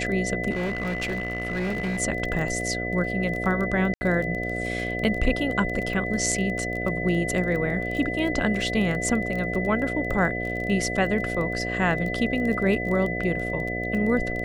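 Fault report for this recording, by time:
buzz 60 Hz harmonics 12 -31 dBFS
crackle 19/s -29 dBFS
tone 2000 Hz -30 dBFS
0.5–2.01 clipped -23.5 dBFS
3.94–4.01 gap 70 ms

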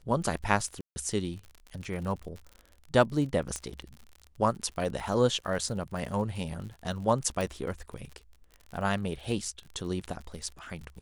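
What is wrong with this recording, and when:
crackle 48/s -38 dBFS
0.81–0.96 gap 0.15 s
3.56 pop -19 dBFS
7.41 pop

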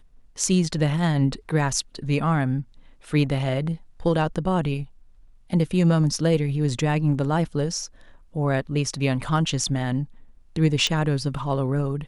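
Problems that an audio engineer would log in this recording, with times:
10.87 pop -11 dBFS

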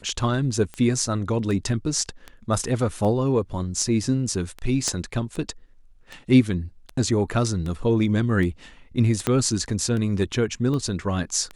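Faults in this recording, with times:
tick 78 rpm -20 dBFS
4.88 pop -12 dBFS
9.27 pop -7 dBFS

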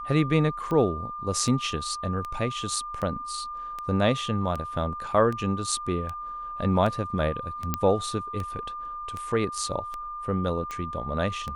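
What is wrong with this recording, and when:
tick 78 rpm -20 dBFS
tone 1200 Hz -33 dBFS
7.74 pop -10 dBFS

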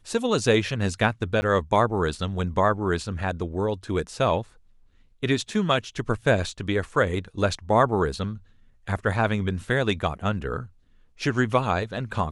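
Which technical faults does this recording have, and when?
1.41–1.42 gap 10 ms

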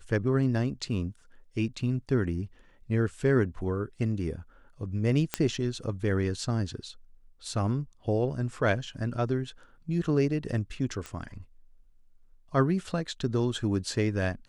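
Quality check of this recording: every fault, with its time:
5.34 pop -9 dBFS
11.06 pop -23 dBFS

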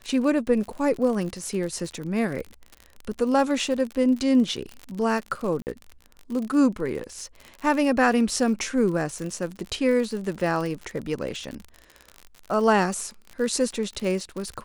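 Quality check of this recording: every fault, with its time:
crackle 56/s -30 dBFS
5.62–5.67 gap 49 ms

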